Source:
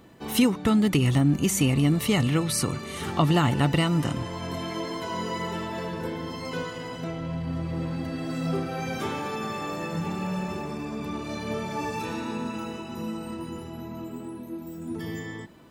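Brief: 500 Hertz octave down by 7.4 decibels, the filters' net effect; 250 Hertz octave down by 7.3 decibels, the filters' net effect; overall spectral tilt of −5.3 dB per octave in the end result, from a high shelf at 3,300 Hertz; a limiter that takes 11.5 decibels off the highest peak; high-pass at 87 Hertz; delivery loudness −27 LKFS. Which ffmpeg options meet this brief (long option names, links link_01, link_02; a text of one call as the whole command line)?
ffmpeg -i in.wav -af "highpass=87,equalizer=frequency=250:width_type=o:gain=-8.5,equalizer=frequency=500:width_type=o:gain=-6.5,highshelf=frequency=3300:gain=-9,volume=9dB,alimiter=limit=-16dB:level=0:latency=1" out.wav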